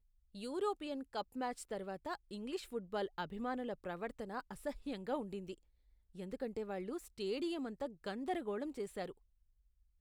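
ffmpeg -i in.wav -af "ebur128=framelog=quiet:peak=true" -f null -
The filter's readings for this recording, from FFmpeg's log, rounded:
Integrated loudness:
  I:         -42.5 LUFS
  Threshold: -52.7 LUFS
Loudness range:
  LRA:         2.2 LU
  Threshold: -62.9 LUFS
  LRA low:   -44.2 LUFS
  LRA high:  -42.0 LUFS
True peak:
  Peak:      -25.3 dBFS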